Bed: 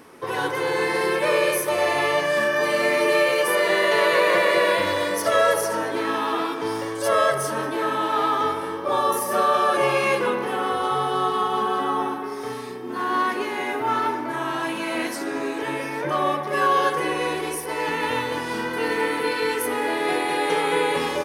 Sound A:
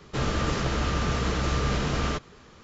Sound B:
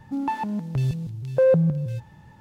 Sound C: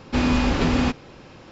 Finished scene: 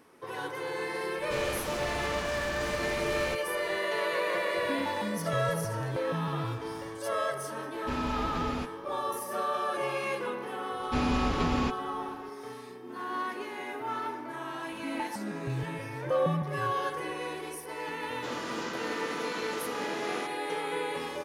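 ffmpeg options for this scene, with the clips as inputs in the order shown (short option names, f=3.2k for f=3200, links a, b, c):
-filter_complex "[1:a]asplit=2[a][b];[2:a]asplit=2[c][d];[3:a]asplit=2[e][f];[0:a]volume=-11.5dB[g];[a]aeval=exprs='0.0447*(abs(mod(val(0)/0.0447+3,4)-2)-1)':c=same[h];[c]acompressor=threshold=-29dB:ratio=6:attack=3.2:release=140:knee=1:detection=peak[i];[b]highpass=f=230:w=0.5412,highpass=f=230:w=1.3066[j];[h]atrim=end=2.63,asetpts=PTS-STARTPTS,volume=-5dB,afade=t=in:d=0.004:c=hsin,afade=t=out:st=2.626:d=0.004:c=hsin,adelay=1170[k];[i]atrim=end=2.4,asetpts=PTS-STARTPTS,volume=-3dB,afade=t=in:d=0.004:c=hsin,afade=t=out:st=2.396:d=0.004:c=hsin,adelay=4580[l];[e]atrim=end=1.51,asetpts=PTS-STARTPTS,volume=-14dB,afade=t=in:d=0.004:c=hsin,afade=t=out:st=1.506:d=0.004:c=hsin,adelay=7740[m];[f]atrim=end=1.51,asetpts=PTS-STARTPTS,volume=-8.5dB,afade=t=in:d=0.004:c=hsin,afade=t=out:st=1.506:d=0.004:c=hsin,adelay=10790[n];[d]atrim=end=2.4,asetpts=PTS-STARTPTS,volume=-10.5dB,afade=t=in:d=0.004:c=hsin,afade=t=out:st=2.396:d=0.004:c=hsin,adelay=14720[o];[j]atrim=end=2.63,asetpts=PTS-STARTPTS,volume=-8dB,afade=t=in:d=0.004:c=hsin,afade=t=out:st=2.626:d=0.004:c=hsin,adelay=18090[p];[g][k][l][m][n][o][p]amix=inputs=7:normalize=0"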